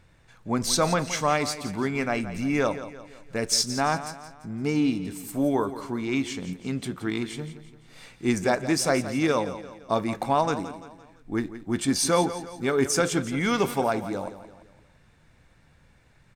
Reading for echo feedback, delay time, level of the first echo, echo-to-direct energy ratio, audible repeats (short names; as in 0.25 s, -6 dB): 45%, 0.171 s, -13.0 dB, -12.0 dB, 4